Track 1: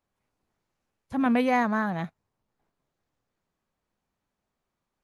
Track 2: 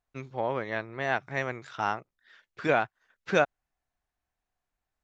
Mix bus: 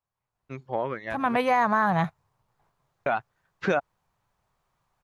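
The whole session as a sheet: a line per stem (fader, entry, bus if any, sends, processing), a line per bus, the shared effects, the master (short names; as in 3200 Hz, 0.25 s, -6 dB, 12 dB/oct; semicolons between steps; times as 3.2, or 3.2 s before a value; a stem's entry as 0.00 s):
1.1 s -10.5 dB -> 1.8 s -4 dB, 0.00 s, no send, ten-band EQ 125 Hz +9 dB, 250 Hz -10 dB, 1000 Hz +7 dB
-2.0 dB, 0.35 s, muted 1.37–3.06, no send, high shelf 3400 Hz -8 dB; reverb removal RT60 0.92 s; auto duck -11 dB, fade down 1.85 s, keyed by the first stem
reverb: off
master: AGC gain up to 9.5 dB; limiter -13.5 dBFS, peak gain reduction 9.5 dB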